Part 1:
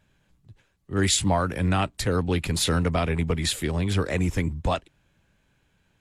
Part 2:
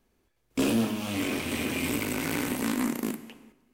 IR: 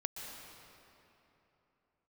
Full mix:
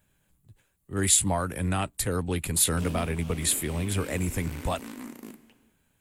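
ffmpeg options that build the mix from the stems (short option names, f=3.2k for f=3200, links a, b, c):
-filter_complex "[0:a]aexciter=amount=5.9:drive=3.5:freq=7.6k,volume=-4.5dB[a];[1:a]adelay=2200,volume=-12.5dB[b];[a][b]amix=inputs=2:normalize=0"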